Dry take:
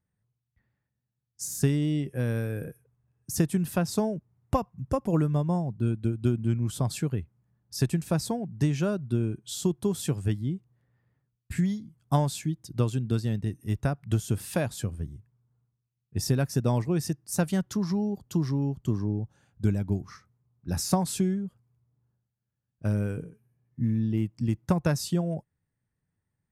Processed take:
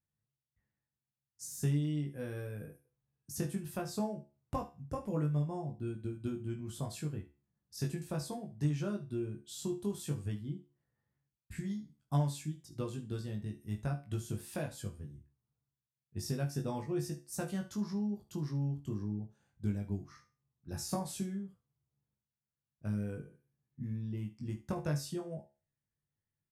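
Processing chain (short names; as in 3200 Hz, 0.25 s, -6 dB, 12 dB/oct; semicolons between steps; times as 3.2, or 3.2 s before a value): resonator 71 Hz, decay 0.33 s, harmonics all, mix 70%; early reflections 20 ms -3 dB, 73 ms -15 dB; gain -6 dB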